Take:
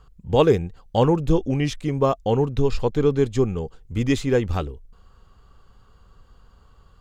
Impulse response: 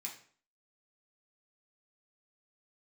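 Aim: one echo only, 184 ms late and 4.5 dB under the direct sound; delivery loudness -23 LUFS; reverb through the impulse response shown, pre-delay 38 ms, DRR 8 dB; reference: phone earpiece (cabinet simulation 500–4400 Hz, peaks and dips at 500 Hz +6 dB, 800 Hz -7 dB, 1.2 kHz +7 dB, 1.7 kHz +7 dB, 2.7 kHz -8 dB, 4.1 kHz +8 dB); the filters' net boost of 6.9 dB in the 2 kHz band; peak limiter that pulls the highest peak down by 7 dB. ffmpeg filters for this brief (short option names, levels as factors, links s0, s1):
-filter_complex "[0:a]equalizer=f=2000:t=o:g=4.5,alimiter=limit=0.266:level=0:latency=1,aecho=1:1:184:0.596,asplit=2[s0][s1];[1:a]atrim=start_sample=2205,adelay=38[s2];[s1][s2]afir=irnorm=-1:irlink=0,volume=0.501[s3];[s0][s3]amix=inputs=2:normalize=0,highpass=500,equalizer=f=500:t=q:w=4:g=6,equalizer=f=800:t=q:w=4:g=-7,equalizer=f=1200:t=q:w=4:g=7,equalizer=f=1700:t=q:w=4:g=7,equalizer=f=2700:t=q:w=4:g=-8,equalizer=f=4100:t=q:w=4:g=8,lowpass=f=4400:w=0.5412,lowpass=f=4400:w=1.3066,volume=1.33"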